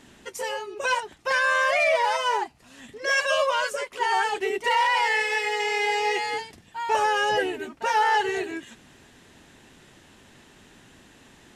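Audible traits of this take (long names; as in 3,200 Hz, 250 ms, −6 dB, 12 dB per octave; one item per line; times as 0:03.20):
background noise floor −54 dBFS
spectral slope −1.0 dB per octave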